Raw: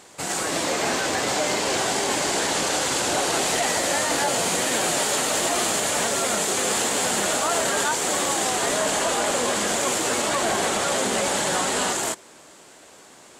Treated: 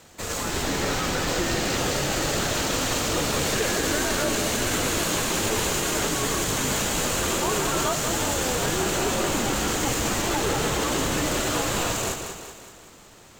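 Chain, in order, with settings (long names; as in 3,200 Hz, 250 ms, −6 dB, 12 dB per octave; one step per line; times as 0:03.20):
echo with a time of its own for lows and highs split 500 Hz, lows 133 ms, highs 189 ms, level −7 dB
frequency shifter −260 Hz
linearly interpolated sample-rate reduction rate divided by 2×
level −2 dB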